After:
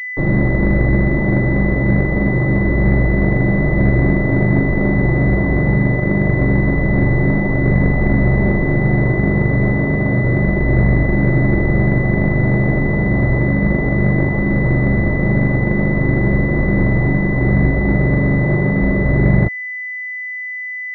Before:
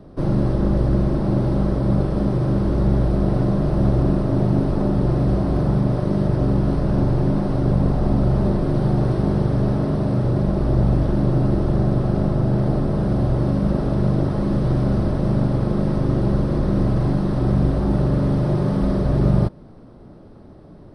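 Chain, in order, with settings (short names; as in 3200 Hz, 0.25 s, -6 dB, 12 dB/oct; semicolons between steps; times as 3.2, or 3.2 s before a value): bit-crush 5-bit; pulse-width modulation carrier 2000 Hz; gain +4 dB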